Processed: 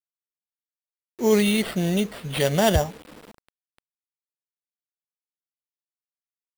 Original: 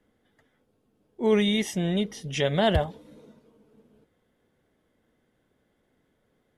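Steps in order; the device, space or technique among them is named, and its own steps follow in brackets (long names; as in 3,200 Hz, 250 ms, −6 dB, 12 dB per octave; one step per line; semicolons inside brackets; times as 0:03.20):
early 8-bit sampler (sample-rate reduction 6,400 Hz, jitter 0%; bit reduction 8 bits)
level +3 dB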